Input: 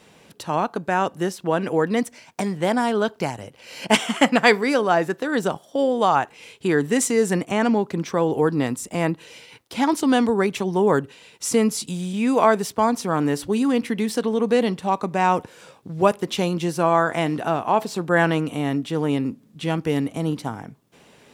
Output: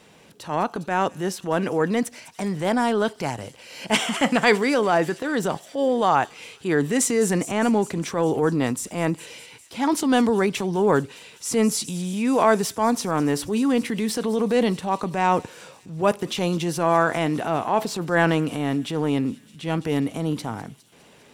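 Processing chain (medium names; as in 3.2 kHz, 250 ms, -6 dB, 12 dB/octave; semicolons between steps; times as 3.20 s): feedback echo behind a high-pass 204 ms, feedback 74%, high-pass 5 kHz, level -13 dB; transient shaper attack -6 dB, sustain +3 dB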